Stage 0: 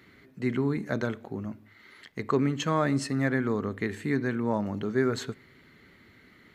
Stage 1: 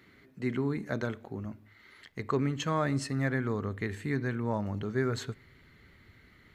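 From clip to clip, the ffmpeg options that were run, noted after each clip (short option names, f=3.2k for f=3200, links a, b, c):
-af "asubboost=boost=4:cutoff=110,volume=-3dB"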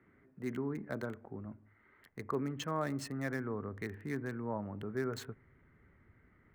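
-filter_complex "[0:a]acrossover=split=180|1400|1800[a][b][c][d];[a]alimiter=level_in=14.5dB:limit=-24dB:level=0:latency=1,volume=-14.5dB[e];[d]aeval=exprs='val(0)*gte(abs(val(0)),0.00794)':c=same[f];[e][b][c][f]amix=inputs=4:normalize=0,volume=-5.5dB"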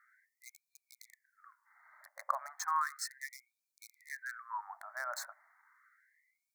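-af "asuperstop=centerf=2900:order=4:qfactor=0.97,afftfilt=real='re*gte(b*sr/1024,540*pow(2300/540,0.5+0.5*sin(2*PI*0.34*pts/sr)))':imag='im*gte(b*sr/1024,540*pow(2300/540,0.5+0.5*sin(2*PI*0.34*pts/sr)))':win_size=1024:overlap=0.75,volume=8dB"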